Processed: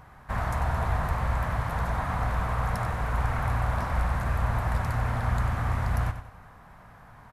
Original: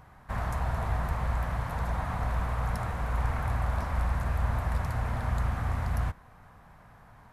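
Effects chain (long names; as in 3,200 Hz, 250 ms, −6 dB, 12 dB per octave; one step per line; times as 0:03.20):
parametric band 1,400 Hz +2 dB 1.6 octaves
on a send: repeating echo 94 ms, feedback 37%, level −10.5 dB
on the sum: level +2.5 dB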